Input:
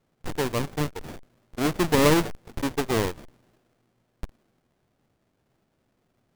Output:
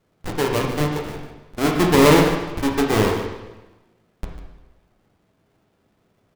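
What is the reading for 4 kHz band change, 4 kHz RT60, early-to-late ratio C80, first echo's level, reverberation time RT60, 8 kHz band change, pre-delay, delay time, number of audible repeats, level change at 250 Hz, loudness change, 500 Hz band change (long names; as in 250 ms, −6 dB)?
+5.5 dB, 1.0 s, 5.0 dB, −11.5 dB, 1.1 s, +4.0 dB, 4 ms, 147 ms, 1, +7.0 dB, +6.5 dB, +7.0 dB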